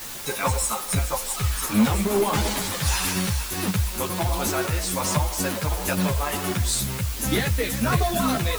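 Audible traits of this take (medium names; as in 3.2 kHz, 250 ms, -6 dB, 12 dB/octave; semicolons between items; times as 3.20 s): tremolo saw down 1.4 Hz, depth 35%; a quantiser's noise floor 6-bit, dither triangular; a shimmering, thickened sound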